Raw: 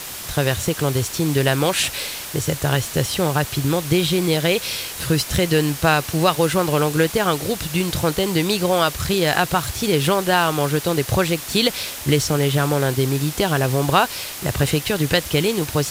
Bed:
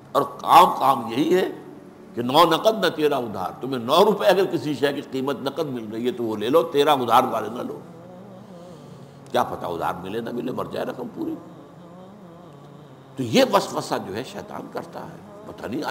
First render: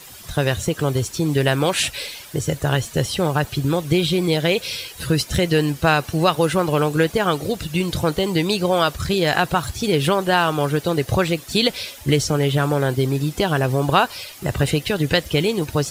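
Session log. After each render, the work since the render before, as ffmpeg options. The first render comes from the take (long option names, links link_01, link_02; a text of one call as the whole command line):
ffmpeg -i in.wav -af "afftdn=noise_reduction=12:noise_floor=-32" out.wav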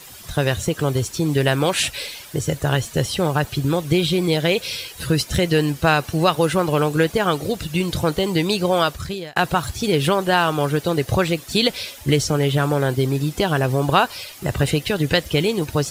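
ffmpeg -i in.wav -filter_complex "[0:a]asplit=2[link_01][link_02];[link_01]atrim=end=9.36,asetpts=PTS-STARTPTS,afade=type=out:start_time=8.81:duration=0.55[link_03];[link_02]atrim=start=9.36,asetpts=PTS-STARTPTS,afade=type=in:duration=0.004:curve=hsin[link_04];[link_03][link_04]concat=n=2:v=0:a=1" out.wav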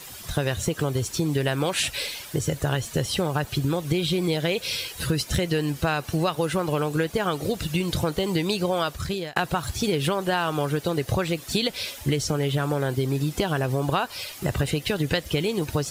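ffmpeg -i in.wav -af "acompressor=threshold=-21dB:ratio=4" out.wav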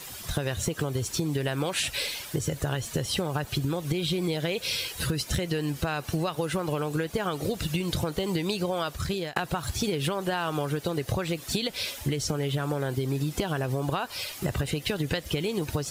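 ffmpeg -i in.wav -af "acompressor=threshold=-24dB:ratio=6" out.wav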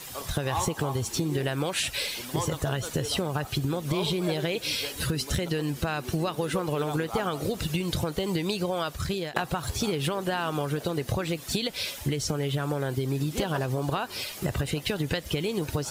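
ffmpeg -i in.wav -i bed.wav -filter_complex "[1:a]volume=-19dB[link_01];[0:a][link_01]amix=inputs=2:normalize=0" out.wav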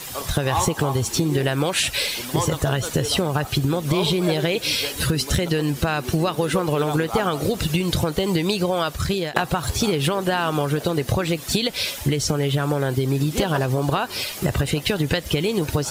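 ffmpeg -i in.wav -af "volume=7dB" out.wav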